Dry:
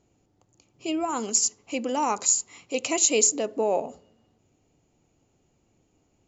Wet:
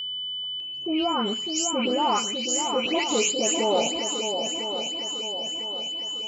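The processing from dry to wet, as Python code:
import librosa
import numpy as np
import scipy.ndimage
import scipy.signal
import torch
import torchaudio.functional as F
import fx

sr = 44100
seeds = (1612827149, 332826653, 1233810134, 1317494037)

p1 = fx.spec_delay(x, sr, highs='late', ms=263)
p2 = fx.bass_treble(p1, sr, bass_db=1, treble_db=-9)
p3 = fx.level_steps(p2, sr, step_db=18)
p4 = p2 + F.gain(torch.from_numpy(p3), 2.0).numpy()
p5 = p4 + 10.0 ** (-29.0 / 20.0) * np.sin(2.0 * np.pi * 3000.0 * np.arange(len(p4)) / sr)
p6 = p5 + fx.echo_swing(p5, sr, ms=1002, ratio=1.5, feedback_pct=45, wet_db=-7.0, dry=0)
y = fx.transient(p6, sr, attack_db=-3, sustain_db=1)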